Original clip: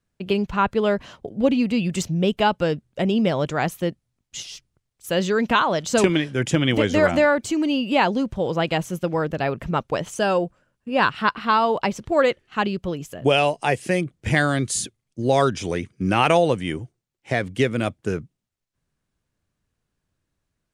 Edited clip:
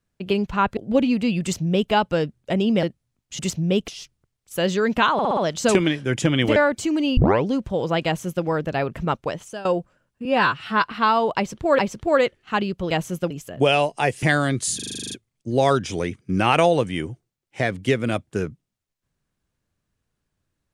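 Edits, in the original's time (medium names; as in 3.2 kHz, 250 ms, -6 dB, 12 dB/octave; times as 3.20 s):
0.77–1.26 s: delete
1.91–2.40 s: copy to 4.41 s
3.32–3.85 s: delete
5.66 s: stutter 0.06 s, 5 plays
6.85–7.22 s: delete
7.83 s: tape start 0.31 s
8.71–9.11 s: copy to 12.95 s
9.80–10.31 s: fade out, to -18 dB
10.91–11.30 s: stretch 1.5×
11.83–12.25 s: loop, 2 plays
13.87–14.30 s: delete
14.83 s: stutter 0.04 s, 10 plays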